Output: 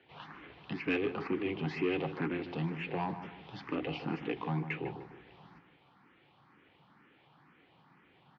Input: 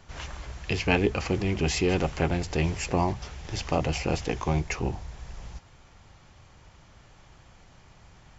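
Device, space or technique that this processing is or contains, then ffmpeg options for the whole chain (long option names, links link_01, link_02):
barber-pole phaser into a guitar amplifier: -filter_complex "[0:a]acrossover=split=170 4800:gain=0.141 1 0.112[link_01][link_02][link_03];[link_01][link_02][link_03]amix=inputs=3:normalize=0,asplit=2[link_04][link_05];[link_05]afreqshift=2.1[link_06];[link_04][link_06]amix=inputs=2:normalize=1,asoftclip=type=tanh:threshold=-23dB,highpass=110,equalizer=frequency=150:width_type=q:width=4:gain=5,equalizer=frequency=290:width_type=q:width=4:gain=6,equalizer=frequency=610:width_type=q:width=4:gain=-9,lowpass=frequency=3600:width=0.5412,lowpass=frequency=3600:width=1.3066,asplit=2[link_07][link_08];[link_08]adelay=151,lowpass=frequency=1500:poles=1,volume=-9.5dB,asplit=2[link_09][link_10];[link_10]adelay=151,lowpass=frequency=1500:poles=1,volume=0.41,asplit=2[link_11][link_12];[link_12]adelay=151,lowpass=frequency=1500:poles=1,volume=0.41,asplit=2[link_13][link_14];[link_14]adelay=151,lowpass=frequency=1500:poles=1,volume=0.41[link_15];[link_07][link_09][link_11][link_13][link_15]amix=inputs=5:normalize=0,volume=-2.5dB"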